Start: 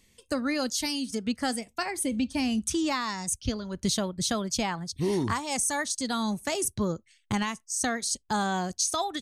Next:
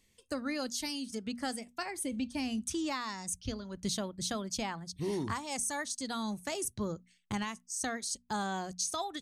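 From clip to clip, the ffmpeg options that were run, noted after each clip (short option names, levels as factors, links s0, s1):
-af "bandreject=f=60:t=h:w=6,bandreject=f=120:t=h:w=6,bandreject=f=180:t=h:w=6,bandreject=f=240:t=h:w=6,volume=0.447"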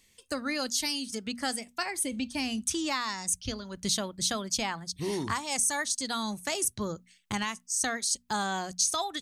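-af "tiltshelf=f=900:g=-3.5,volume=1.68"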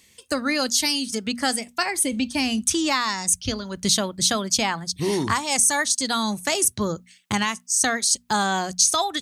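-af "highpass=56,volume=2.66"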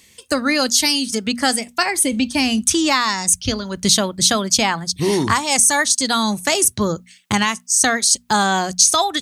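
-af "deesser=0.25,volume=1.88"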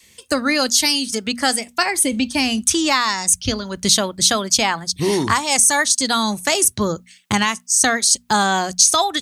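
-af "adynamicequalizer=threshold=0.0178:dfrequency=160:dqfactor=0.8:tfrequency=160:tqfactor=0.8:attack=5:release=100:ratio=0.375:range=2.5:mode=cutabove:tftype=bell"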